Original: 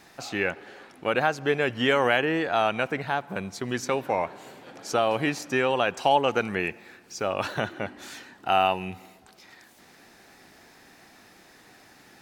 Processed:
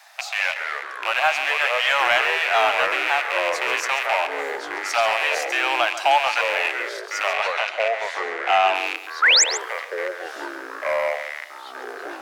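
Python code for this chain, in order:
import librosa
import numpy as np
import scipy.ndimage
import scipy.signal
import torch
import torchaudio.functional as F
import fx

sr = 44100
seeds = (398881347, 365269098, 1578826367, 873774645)

p1 = fx.rattle_buzz(x, sr, strikes_db=-42.0, level_db=-17.0)
p2 = scipy.signal.sosfilt(scipy.signal.butter(12, 610.0, 'highpass', fs=sr, output='sos'), p1)
p3 = np.clip(10.0 ** (17.0 / 20.0) * p2, -1.0, 1.0) / 10.0 ** (17.0 / 20.0)
p4 = p2 + (p3 * 10.0 ** (-3.0 / 20.0))
p5 = fx.echo_pitch(p4, sr, ms=152, semitones=-4, count=3, db_per_echo=-6.0)
p6 = fx.air_absorb(p5, sr, metres=58.0, at=(7.33, 8.75))
p7 = fx.spec_paint(p6, sr, seeds[0], shape='rise', start_s=9.22, length_s=0.22, low_hz=1200.0, high_hz=8000.0, level_db=-14.0)
y = p7 + fx.echo_single(p7, sr, ms=138, db=-12.0, dry=0)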